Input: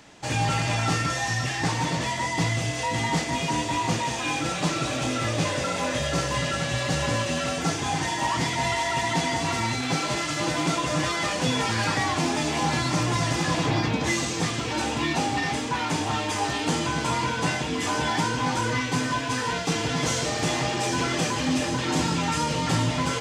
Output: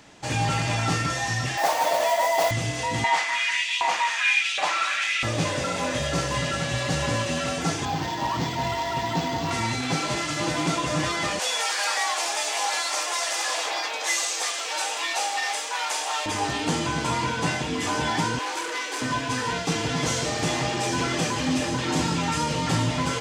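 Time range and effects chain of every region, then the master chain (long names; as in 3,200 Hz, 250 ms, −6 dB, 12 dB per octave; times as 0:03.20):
0:01.57–0:02.51: noise that follows the level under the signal 13 dB + high-pass with resonance 640 Hz, resonance Q 6.5
0:03.04–0:05.23: auto-filter high-pass saw up 1.3 Hz 680–3,300 Hz + drawn EQ curve 1,200 Hz 0 dB, 2,200 Hz +6 dB, 4,400 Hz 0 dB, 13,000 Hz −5 dB
0:07.85–0:09.51: parametric band 2,100 Hz −6 dB 0.74 octaves + linearly interpolated sample-rate reduction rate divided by 4×
0:11.39–0:16.26: inverse Chebyshev high-pass filter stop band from 160 Hz, stop band 60 dB + high-shelf EQ 6,200 Hz +10 dB + notch filter 1,000 Hz, Q 27
0:18.39–0:19.02: Butterworth high-pass 300 Hz 96 dB per octave + high-shelf EQ 5,900 Hz +5 dB + saturating transformer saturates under 2,800 Hz
whole clip: no processing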